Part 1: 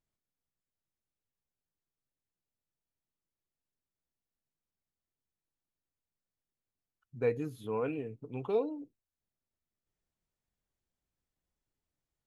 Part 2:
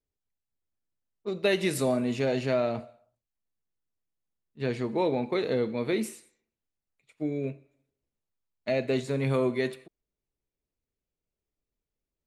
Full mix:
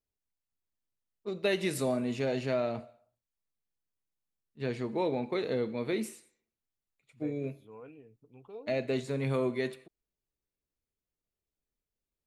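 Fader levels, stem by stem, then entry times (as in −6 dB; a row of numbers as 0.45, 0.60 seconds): −15.5, −4.0 decibels; 0.00, 0.00 seconds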